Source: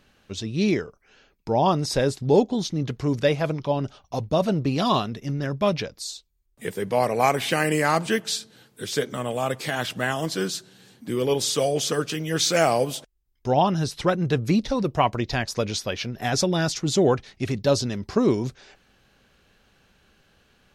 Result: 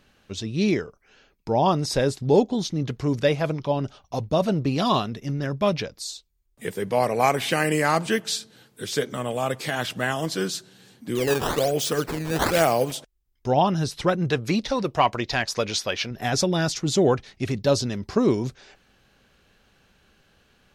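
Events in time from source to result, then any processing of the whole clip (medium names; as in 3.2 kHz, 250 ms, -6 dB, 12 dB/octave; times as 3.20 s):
11.15–12.92 s: decimation with a swept rate 12×, swing 160% 1.1 Hz
14.30–16.11 s: overdrive pedal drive 8 dB, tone 7.2 kHz, clips at -6.5 dBFS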